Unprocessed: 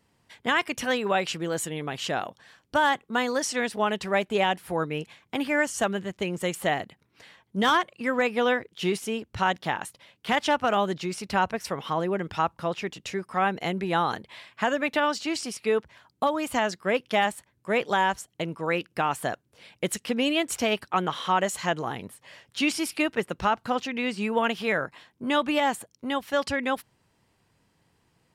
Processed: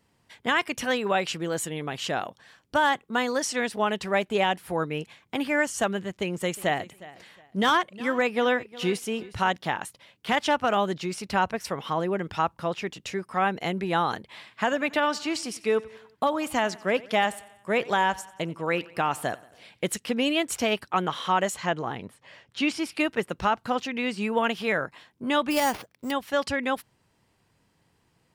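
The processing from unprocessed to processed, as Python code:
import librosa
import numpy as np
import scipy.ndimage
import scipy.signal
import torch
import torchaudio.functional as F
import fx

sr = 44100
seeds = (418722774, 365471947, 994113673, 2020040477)

y = fx.echo_feedback(x, sr, ms=361, feedback_pct=25, wet_db=-19, at=(6.07, 9.5))
y = fx.echo_feedback(y, sr, ms=91, feedback_pct=55, wet_db=-21.0, at=(14.33, 19.91), fade=0.02)
y = fx.peak_eq(y, sr, hz=14000.0, db=-13.0, octaves=1.4, at=(21.54, 22.97))
y = fx.sample_hold(y, sr, seeds[0], rate_hz=7700.0, jitter_pct=0, at=(25.5, 26.1), fade=0.02)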